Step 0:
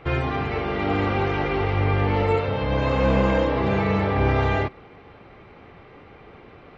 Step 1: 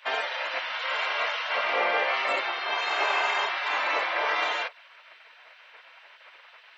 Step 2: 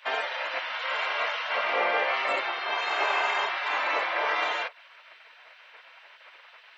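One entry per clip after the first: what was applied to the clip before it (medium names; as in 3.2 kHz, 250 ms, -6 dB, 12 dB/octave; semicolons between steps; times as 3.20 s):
spectral gate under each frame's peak -15 dB weak; Chebyshev high-pass 490 Hz, order 3; trim +7 dB
dynamic bell 5.2 kHz, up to -3 dB, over -43 dBFS, Q 0.76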